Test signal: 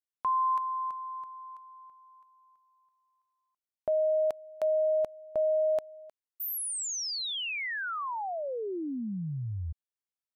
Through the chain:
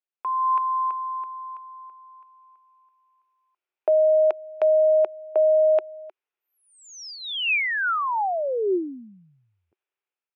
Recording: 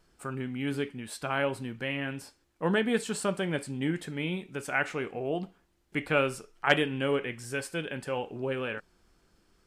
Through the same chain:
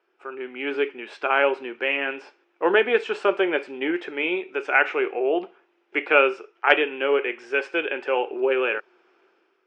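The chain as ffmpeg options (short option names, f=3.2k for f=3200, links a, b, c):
-af "aemphasis=mode=reproduction:type=cd,dynaudnorm=f=190:g=5:m=10dB,highpass=f=370:w=0.5412,highpass=f=370:w=1.3066,equalizer=f=370:t=q:w=4:g=9,equalizer=f=840:t=q:w=4:g=3,equalizer=f=1.4k:t=q:w=4:g=4,equalizer=f=2.5k:t=q:w=4:g=8,equalizer=f=4.3k:t=q:w=4:g=-9,lowpass=f=4.9k:w=0.5412,lowpass=f=4.9k:w=1.3066,volume=-2.5dB"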